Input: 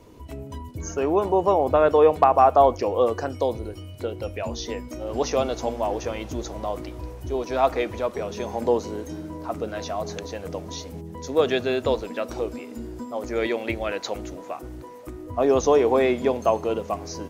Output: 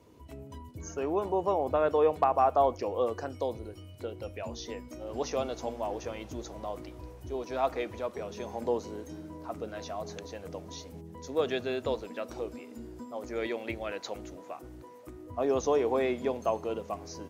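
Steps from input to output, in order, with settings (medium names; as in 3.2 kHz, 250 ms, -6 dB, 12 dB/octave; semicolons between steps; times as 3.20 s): high-pass 56 Hz; trim -8.5 dB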